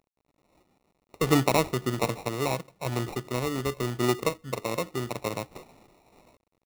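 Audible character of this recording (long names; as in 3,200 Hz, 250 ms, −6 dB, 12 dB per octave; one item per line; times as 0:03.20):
aliases and images of a low sample rate 1,600 Hz, jitter 0%
sample-and-hold tremolo
a quantiser's noise floor 12 bits, dither none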